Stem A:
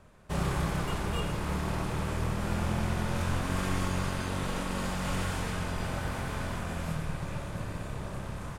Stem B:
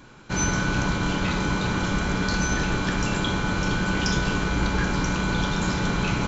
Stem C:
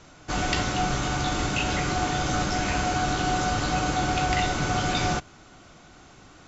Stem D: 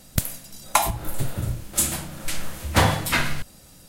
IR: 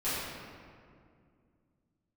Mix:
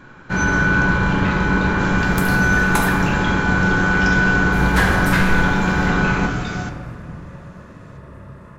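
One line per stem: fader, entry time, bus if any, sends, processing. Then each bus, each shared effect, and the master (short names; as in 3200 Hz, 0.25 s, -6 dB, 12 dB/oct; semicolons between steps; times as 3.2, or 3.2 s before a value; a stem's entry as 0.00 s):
-5.0 dB, 0.00 s, send -8 dB, high shelf 2100 Hz -11.5 dB; notch comb 780 Hz
+2.5 dB, 0.00 s, send -10.5 dB, high shelf 2800 Hz -11.5 dB
-8.5 dB, 1.50 s, send -15 dB, dry
-7.5 dB, 2.00 s, muted 2.89–4.52, send -7 dB, dry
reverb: on, RT60 2.2 s, pre-delay 5 ms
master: bell 1600 Hz +8.5 dB 0.62 oct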